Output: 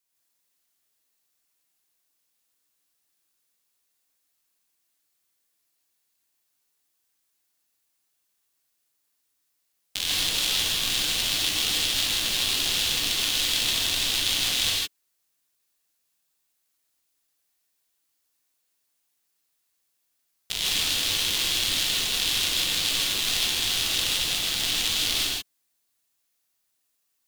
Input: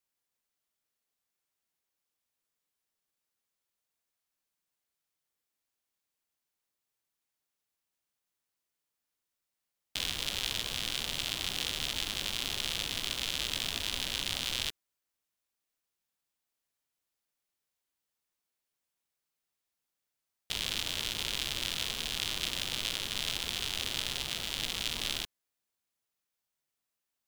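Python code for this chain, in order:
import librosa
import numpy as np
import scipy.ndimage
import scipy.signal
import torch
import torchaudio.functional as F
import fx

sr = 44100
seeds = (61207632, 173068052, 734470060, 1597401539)

y = fx.high_shelf(x, sr, hz=3100.0, db=7.5)
y = fx.rev_gated(y, sr, seeds[0], gate_ms=180, shape='rising', drr_db=-4.5)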